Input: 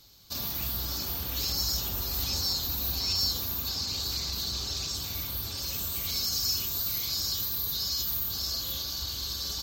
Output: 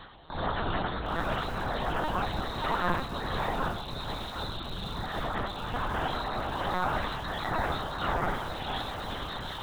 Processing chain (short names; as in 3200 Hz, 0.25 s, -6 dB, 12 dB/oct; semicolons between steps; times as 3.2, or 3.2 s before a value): random spectral dropouts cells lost 33%; careless resampling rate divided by 3×, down none, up zero stuff; bell 2300 Hz -9.5 dB 0.25 oct; shoebox room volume 83 m³, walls mixed, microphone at 0.52 m; reverse; upward compressor, threshold -23 dBFS; reverse; bell 830 Hz +5 dB 1.5 oct; resonator 160 Hz, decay 0.69 s, harmonics all, mix 50%; on a send: narrowing echo 0.308 s, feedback 77%, band-pass 740 Hz, level -16 dB; on the sum: LPC vocoder at 8 kHz pitch kept; lo-fi delay 0.761 s, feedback 55%, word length 7-bit, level -14.5 dB; gain +5.5 dB